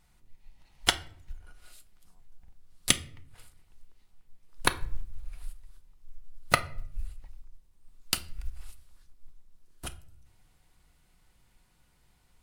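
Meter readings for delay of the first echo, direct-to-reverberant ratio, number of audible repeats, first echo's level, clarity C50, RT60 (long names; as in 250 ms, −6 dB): no echo audible, 9.5 dB, no echo audible, no echo audible, 17.0 dB, 0.55 s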